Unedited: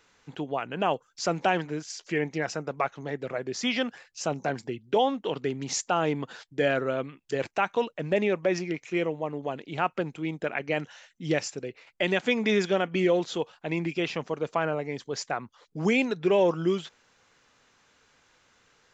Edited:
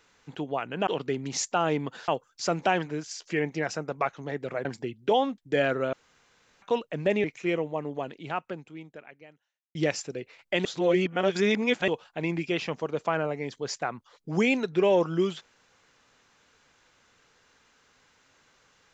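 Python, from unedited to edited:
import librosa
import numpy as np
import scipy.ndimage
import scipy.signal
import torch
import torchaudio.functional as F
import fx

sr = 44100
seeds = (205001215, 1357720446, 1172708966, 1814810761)

y = fx.edit(x, sr, fx.cut(start_s=3.44, length_s=1.06),
    fx.move(start_s=5.23, length_s=1.21, to_s=0.87),
    fx.room_tone_fill(start_s=6.99, length_s=0.69),
    fx.cut(start_s=8.3, length_s=0.42),
    fx.fade_out_span(start_s=9.39, length_s=1.84, curve='qua'),
    fx.reverse_span(start_s=12.13, length_s=1.23), tone=tone)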